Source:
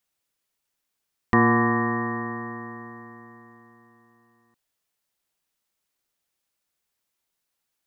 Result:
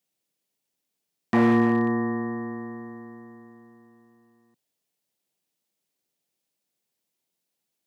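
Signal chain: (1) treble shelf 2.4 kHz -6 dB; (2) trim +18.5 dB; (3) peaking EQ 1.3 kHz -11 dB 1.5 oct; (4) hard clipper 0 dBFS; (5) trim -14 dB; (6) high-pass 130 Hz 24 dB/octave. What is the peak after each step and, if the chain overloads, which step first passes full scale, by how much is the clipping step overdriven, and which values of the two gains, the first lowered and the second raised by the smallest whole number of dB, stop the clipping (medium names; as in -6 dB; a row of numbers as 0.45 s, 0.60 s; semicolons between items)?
-7.5 dBFS, +11.0 dBFS, +8.5 dBFS, 0.0 dBFS, -14.0 dBFS, -9.5 dBFS; step 2, 8.5 dB; step 2 +9.5 dB, step 5 -5 dB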